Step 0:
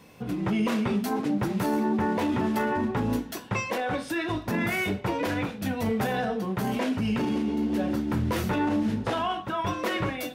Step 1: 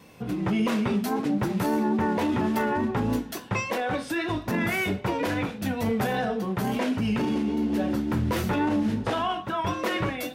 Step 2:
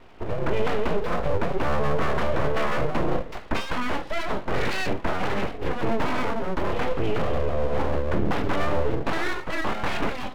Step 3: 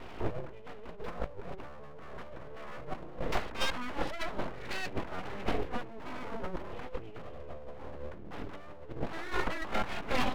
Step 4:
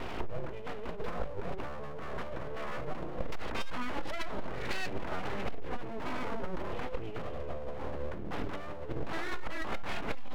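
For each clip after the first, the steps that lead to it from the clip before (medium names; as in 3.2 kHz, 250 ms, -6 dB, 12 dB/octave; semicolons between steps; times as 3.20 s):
vibrato 3.6 Hz 30 cents; trim +1 dB
distance through air 450 m; full-wave rectifier; trim +5.5 dB
compressor with a negative ratio -29 dBFS, ratio -0.5; trim -4 dB
transformer saturation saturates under 110 Hz; trim +8 dB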